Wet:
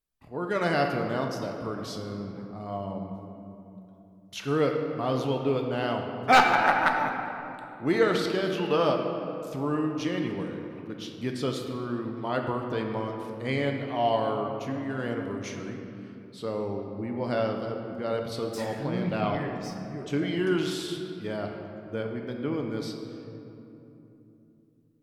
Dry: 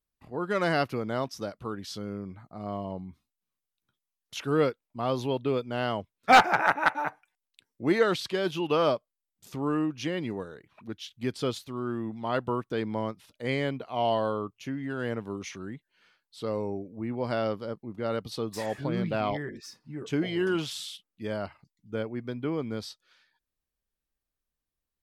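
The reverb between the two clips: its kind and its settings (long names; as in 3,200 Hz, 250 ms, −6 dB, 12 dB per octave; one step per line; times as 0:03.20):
rectangular room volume 130 cubic metres, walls hard, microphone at 0.31 metres
level −1 dB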